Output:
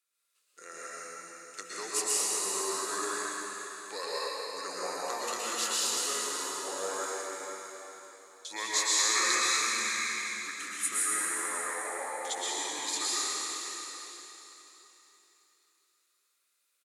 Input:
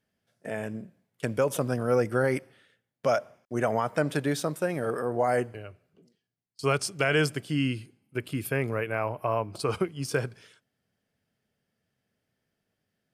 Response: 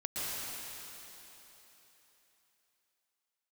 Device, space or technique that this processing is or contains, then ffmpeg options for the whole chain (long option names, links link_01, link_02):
slowed and reverbed: -filter_complex "[0:a]highpass=410,aderivative,asetrate=34398,aresample=44100[link_01];[1:a]atrim=start_sample=2205[link_02];[link_01][link_02]afir=irnorm=-1:irlink=0,aecho=1:1:393|575:0.15|0.126,volume=6.5dB"